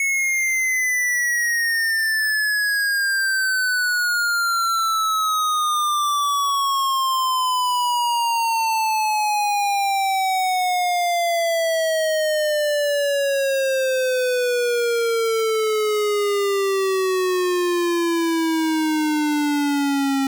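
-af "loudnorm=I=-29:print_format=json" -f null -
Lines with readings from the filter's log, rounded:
"input_i" : "-19.6",
"input_tp" : "-19.0",
"input_lra" : "2.1",
"input_thresh" : "-29.6",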